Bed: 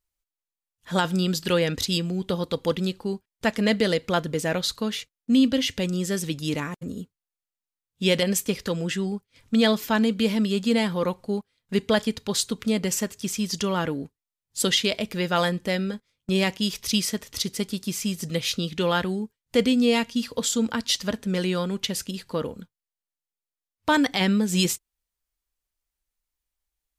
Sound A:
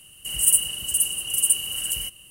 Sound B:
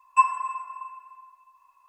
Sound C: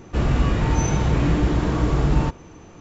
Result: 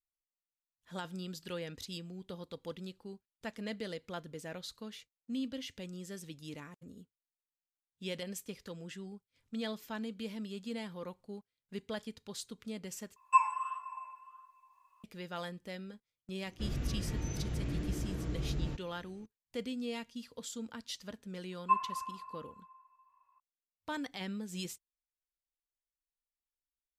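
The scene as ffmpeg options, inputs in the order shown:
-filter_complex "[2:a]asplit=2[s0][s1];[0:a]volume=0.119[s2];[s0]flanger=delay=4.4:depth=6.1:regen=84:speed=1.5:shape=sinusoidal[s3];[3:a]equalizer=f=960:t=o:w=1.1:g=-10.5[s4];[s1]lowpass=2100[s5];[s2]asplit=2[s6][s7];[s6]atrim=end=13.164[s8];[s3]atrim=end=1.88,asetpts=PTS-STARTPTS,volume=0.794[s9];[s7]atrim=start=15.036[s10];[s4]atrim=end=2.8,asetpts=PTS-STARTPTS,volume=0.15,afade=t=in:d=0.004:c=hsin,afade=t=out:st=2.796:d=0.004:c=hsin,adelay=16460[s11];[s5]atrim=end=1.88,asetpts=PTS-STARTPTS,volume=0.355,afade=t=in:d=0.004:c=hsin,afade=t=out:st=1.876:d=0.004:c=hsin,adelay=21520[s12];[s8][s9]acrossfade=d=0.004:c1=hsin:c2=hsin[s13];[s13][s10]acrossfade=d=0.004:c1=hsin:c2=hsin[s14];[s14][s11][s12]amix=inputs=3:normalize=0"

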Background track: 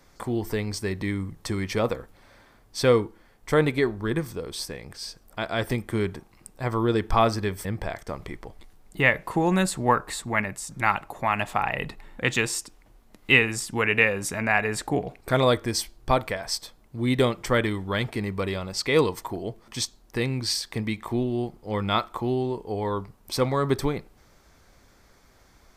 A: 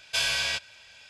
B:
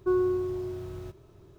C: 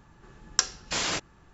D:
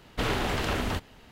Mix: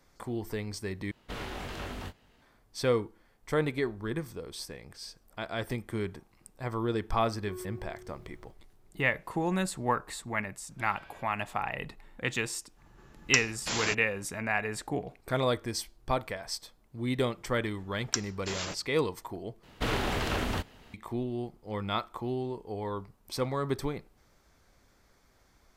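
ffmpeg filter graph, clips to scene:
-filter_complex "[4:a]asplit=2[s0][s1];[3:a]asplit=2[s2][s3];[0:a]volume=0.422[s4];[s0]asplit=2[s5][s6];[s6]adelay=21,volume=0.473[s7];[s5][s7]amix=inputs=2:normalize=0[s8];[1:a]lowpass=1300[s9];[s3]acrossover=split=1100[s10][s11];[s10]aeval=exprs='val(0)*(1-0.5/2+0.5/2*cos(2*PI*6.1*n/s))':c=same[s12];[s11]aeval=exprs='val(0)*(1-0.5/2-0.5/2*cos(2*PI*6.1*n/s))':c=same[s13];[s12][s13]amix=inputs=2:normalize=0[s14];[s4]asplit=3[s15][s16][s17];[s15]atrim=end=1.114[s18];[s8]atrim=end=1.31,asetpts=PTS-STARTPTS,volume=0.266[s19];[s16]atrim=start=2.416:end=19.634[s20];[s1]atrim=end=1.31,asetpts=PTS-STARTPTS,volume=0.794[s21];[s17]atrim=start=20.936[s22];[2:a]atrim=end=1.58,asetpts=PTS-STARTPTS,volume=0.133,afade=t=in:d=0.004:c=hsin,afade=t=out:st=1.576:d=0.004:c=hsin,adelay=7410[s23];[s9]atrim=end=1.09,asetpts=PTS-STARTPTS,volume=0.15,afade=t=in:d=0.004:c=hsin,afade=t=out:st=1.086:d=0.004:c=hsin,adelay=10650[s24];[s2]atrim=end=1.53,asetpts=PTS-STARTPTS,volume=0.631,afade=t=in:d=0.05,afade=t=out:st=1.48:d=0.05,adelay=12750[s25];[s14]atrim=end=1.53,asetpts=PTS-STARTPTS,volume=0.501,afade=t=in:d=0.004:c=hsin,afade=t=out:st=1.526:d=0.004:c=hsin,adelay=17550[s26];[s18][s19]acrossfade=d=0.004:c1=hsin:c2=hsin[s27];[s27][s20]acrossfade=d=0.004:c1=hsin:c2=hsin[s28];[s28][s21]acrossfade=d=0.004:c1=hsin:c2=hsin[s29];[s29][s22]acrossfade=d=0.004:c1=hsin:c2=hsin[s30];[s30][s23][s24][s25][s26]amix=inputs=5:normalize=0"

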